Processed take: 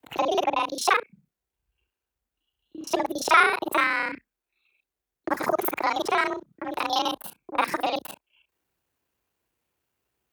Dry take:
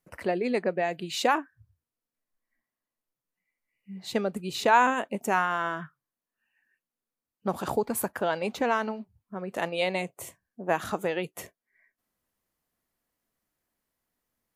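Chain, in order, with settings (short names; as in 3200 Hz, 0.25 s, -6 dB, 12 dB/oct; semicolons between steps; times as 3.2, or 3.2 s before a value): local time reversal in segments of 44 ms; frequency shift +30 Hz; wide varispeed 1.41×; gain +3.5 dB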